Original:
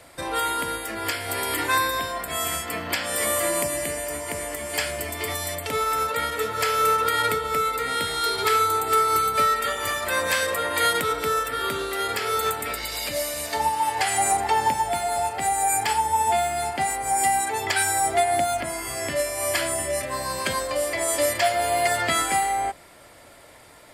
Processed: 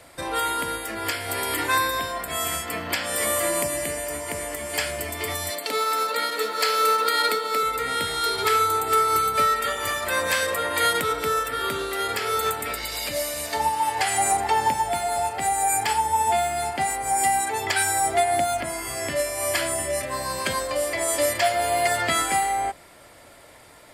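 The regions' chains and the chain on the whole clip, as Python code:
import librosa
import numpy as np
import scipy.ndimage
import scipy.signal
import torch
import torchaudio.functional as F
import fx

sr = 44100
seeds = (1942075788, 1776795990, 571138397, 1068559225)

y = fx.chain(x, sr, fx.highpass(hz=230.0, slope=24),
    fx.peak_eq(hz=4300.0, db=12.0, octaves=0.24),
    fx.quant_float(bits=4), at=(5.5, 7.63))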